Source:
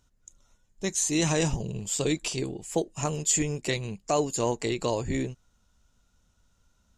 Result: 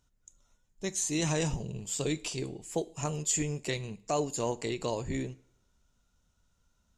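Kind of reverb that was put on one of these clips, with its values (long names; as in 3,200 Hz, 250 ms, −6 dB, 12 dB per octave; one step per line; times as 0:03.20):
coupled-rooms reverb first 0.48 s, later 1.7 s, from −25 dB, DRR 15 dB
level −5 dB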